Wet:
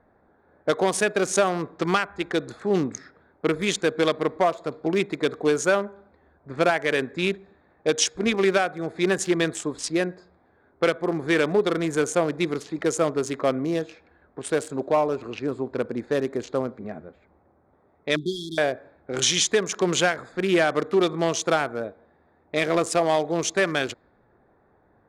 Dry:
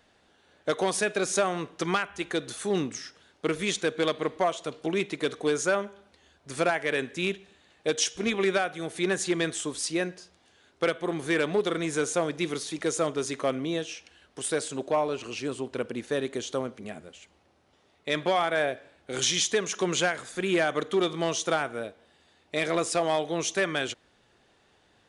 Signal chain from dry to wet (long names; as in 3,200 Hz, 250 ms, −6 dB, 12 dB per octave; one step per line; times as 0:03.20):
adaptive Wiener filter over 15 samples
low-pass that shuts in the quiet parts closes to 1,800 Hz, open at −27 dBFS
0:18.16–0:18.58: linear-phase brick-wall band-stop 420–3,200 Hz
level +5 dB